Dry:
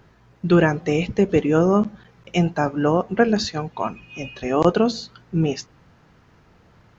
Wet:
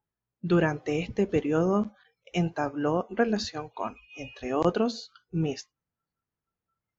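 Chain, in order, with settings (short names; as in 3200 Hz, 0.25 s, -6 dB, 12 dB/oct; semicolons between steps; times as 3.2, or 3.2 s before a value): spectral noise reduction 29 dB; gain -7.5 dB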